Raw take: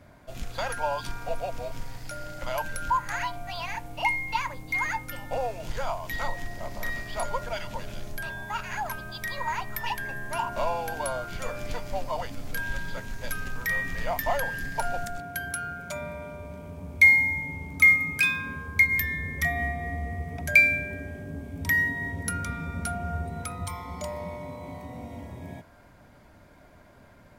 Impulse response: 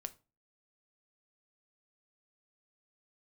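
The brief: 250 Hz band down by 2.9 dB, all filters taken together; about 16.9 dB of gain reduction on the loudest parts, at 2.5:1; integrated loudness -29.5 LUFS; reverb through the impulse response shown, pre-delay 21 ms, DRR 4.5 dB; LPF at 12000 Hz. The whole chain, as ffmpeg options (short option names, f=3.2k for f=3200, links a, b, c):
-filter_complex "[0:a]lowpass=12k,equalizer=f=250:t=o:g=-4,acompressor=threshold=-40dB:ratio=2.5,asplit=2[a][b];[1:a]atrim=start_sample=2205,adelay=21[c];[b][c]afir=irnorm=-1:irlink=0,volume=-1.5dB[d];[a][d]amix=inputs=2:normalize=0,volume=9.5dB"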